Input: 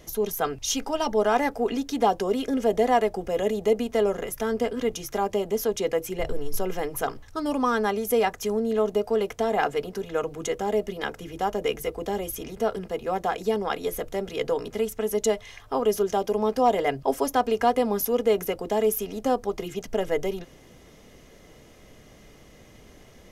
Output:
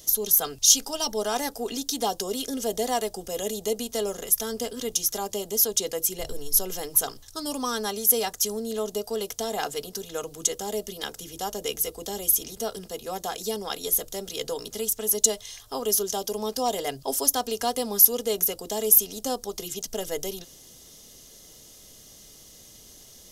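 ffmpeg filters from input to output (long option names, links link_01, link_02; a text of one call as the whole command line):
ffmpeg -i in.wav -af "aexciter=amount=6.2:drive=6.4:freq=3300,volume=-6dB" out.wav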